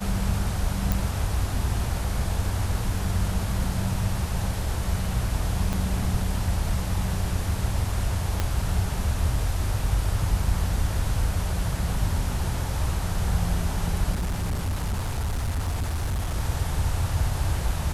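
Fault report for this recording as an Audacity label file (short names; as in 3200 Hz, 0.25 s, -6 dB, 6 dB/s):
0.920000	0.920000	pop
5.730000	5.730000	pop
8.400000	8.400000	pop -10 dBFS
14.120000	16.370000	clipped -23 dBFS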